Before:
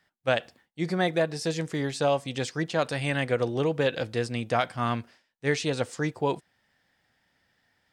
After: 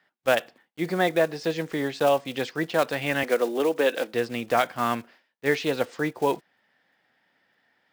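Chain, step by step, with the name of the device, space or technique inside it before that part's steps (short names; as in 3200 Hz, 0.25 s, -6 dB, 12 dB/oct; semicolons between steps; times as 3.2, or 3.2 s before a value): early digital voice recorder (BPF 230–3500 Hz; block floating point 5-bit); 3.23–4.14 HPF 220 Hz 24 dB/oct; gain +3.5 dB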